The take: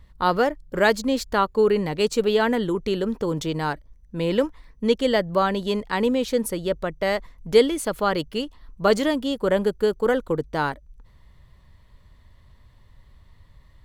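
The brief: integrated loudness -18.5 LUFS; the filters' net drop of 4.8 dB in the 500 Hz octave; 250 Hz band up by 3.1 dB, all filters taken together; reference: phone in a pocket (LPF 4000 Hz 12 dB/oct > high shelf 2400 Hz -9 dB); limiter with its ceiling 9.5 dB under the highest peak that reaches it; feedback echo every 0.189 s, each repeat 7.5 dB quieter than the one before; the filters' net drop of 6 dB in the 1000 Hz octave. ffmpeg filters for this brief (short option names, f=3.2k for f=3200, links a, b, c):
-af "equalizer=f=250:t=o:g=5.5,equalizer=f=500:t=o:g=-6,equalizer=f=1k:t=o:g=-4.5,alimiter=limit=-16.5dB:level=0:latency=1,lowpass=4k,highshelf=f=2.4k:g=-9,aecho=1:1:189|378|567|756|945:0.422|0.177|0.0744|0.0312|0.0131,volume=8.5dB"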